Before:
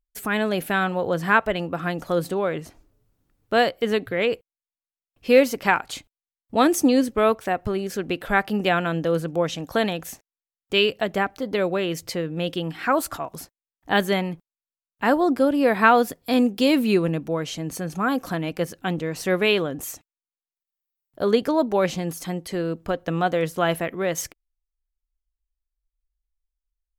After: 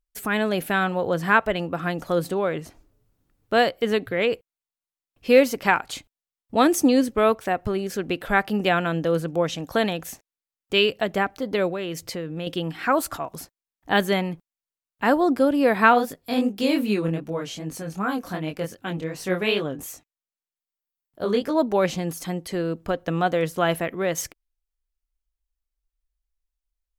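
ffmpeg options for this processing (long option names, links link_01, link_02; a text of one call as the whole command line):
ffmpeg -i in.wav -filter_complex "[0:a]asettb=1/sr,asplit=3[link_01][link_02][link_03];[link_01]atrim=end=11.704[link_04];[link_02]atrim=start=11.7:end=12.47,asetpts=PTS-STARTPTS,afade=type=in:duration=0.004:curve=qsin,afade=type=out:start_time=0.766:duration=0.004:curve=qsin,acompressor=threshold=-29dB:ratio=2:attack=3.2:release=140:knee=1:detection=peak[link_05];[link_03]atrim=start=12.466[link_06];[link_04][link_05]acrossfade=duration=0.004:curve1=hsin:curve2=qsin[link_07];[link_07][link_06]acrossfade=duration=0.004:curve1=qsin:curve2=hsin,asplit=3[link_08][link_09][link_10];[link_08]afade=type=out:start_time=15.92:duration=0.02[link_11];[link_09]flanger=delay=19:depth=5.9:speed=2.6,afade=type=in:start_time=15.92:duration=0.02,afade=type=out:start_time=21.55:duration=0.02[link_12];[link_10]afade=type=in:start_time=21.55:duration=0.02[link_13];[link_11][link_12][link_13]amix=inputs=3:normalize=0" out.wav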